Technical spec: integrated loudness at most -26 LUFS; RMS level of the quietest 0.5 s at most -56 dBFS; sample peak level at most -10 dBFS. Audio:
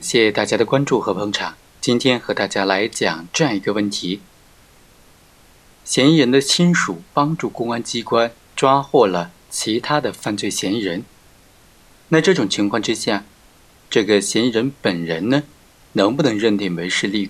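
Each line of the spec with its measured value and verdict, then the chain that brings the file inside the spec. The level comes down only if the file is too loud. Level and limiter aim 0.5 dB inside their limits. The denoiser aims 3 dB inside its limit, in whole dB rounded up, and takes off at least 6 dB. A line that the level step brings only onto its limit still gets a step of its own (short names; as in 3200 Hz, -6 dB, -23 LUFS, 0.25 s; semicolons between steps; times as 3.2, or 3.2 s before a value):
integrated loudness -18.5 LUFS: fail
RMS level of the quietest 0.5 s -50 dBFS: fail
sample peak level -1.5 dBFS: fail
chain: gain -8 dB; limiter -10.5 dBFS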